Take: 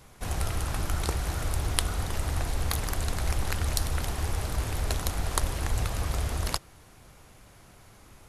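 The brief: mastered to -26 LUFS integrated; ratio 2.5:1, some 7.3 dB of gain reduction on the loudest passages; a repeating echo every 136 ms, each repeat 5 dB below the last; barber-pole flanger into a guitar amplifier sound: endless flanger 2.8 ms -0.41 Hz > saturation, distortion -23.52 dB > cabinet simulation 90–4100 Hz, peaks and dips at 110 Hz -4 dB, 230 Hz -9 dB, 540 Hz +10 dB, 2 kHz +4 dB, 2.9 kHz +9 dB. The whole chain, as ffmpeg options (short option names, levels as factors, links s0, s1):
-filter_complex "[0:a]acompressor=threshold=0.0282:ratio=2.5,aecho=1:1:136|272|408|544|680|816|952:0.562|0.315|0.176|0.0988|0.0553|0.031|0.0173,asplit=2[s0][s1];[s1]adelay=2.8,afreqshift=-0.41[s2];[s0][s2]amix=inputs=2:normalize=1,asoftclip=threshold=0.0708,highpass=90,equalizer=f=110:t=q:w=4:g=-4,equalizer=f=230:t=q:w=4:g=-9,equalizer=f=540:t=q:w=4:g=10,equalizer=f=2000:t=q:w=4:g=4,equalizer=f=2900:t=q:w=4:g=9,lowpass=f=4100:w=0.5412,lowpass=f=4100:w=1.3066,volume=4.73"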